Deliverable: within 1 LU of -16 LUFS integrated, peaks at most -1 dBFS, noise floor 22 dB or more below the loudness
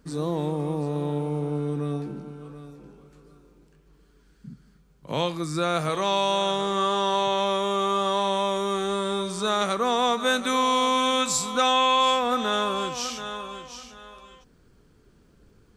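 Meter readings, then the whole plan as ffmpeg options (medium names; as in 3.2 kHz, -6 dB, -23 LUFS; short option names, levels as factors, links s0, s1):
loudness -24.5 LUFS; peak level -10.5 dBFS; loudness target -16.0 LUFS
-> -af "volume=2.66"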